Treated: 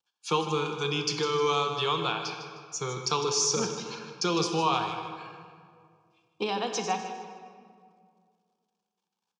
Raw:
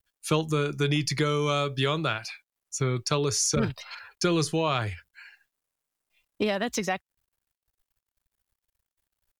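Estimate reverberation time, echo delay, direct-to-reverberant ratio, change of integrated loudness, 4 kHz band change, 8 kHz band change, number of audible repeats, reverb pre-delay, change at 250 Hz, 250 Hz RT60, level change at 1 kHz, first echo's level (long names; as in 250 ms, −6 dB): 2.1 s, 154 ms, 4.5 dB, −1.5 dB, +1.0 dB, −0.5 dB, 2, 16 ms, −5.0 dB, 2.5 s, +3.5 dB, −11.5 dB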